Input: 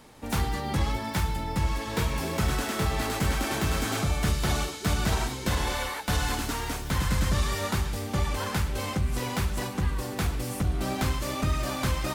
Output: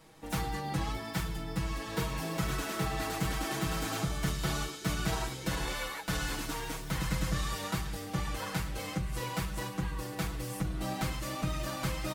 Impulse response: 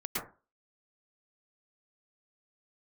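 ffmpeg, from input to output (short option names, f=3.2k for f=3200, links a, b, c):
-af "aecho=1:1:6.2:0.95,volume=-8dB"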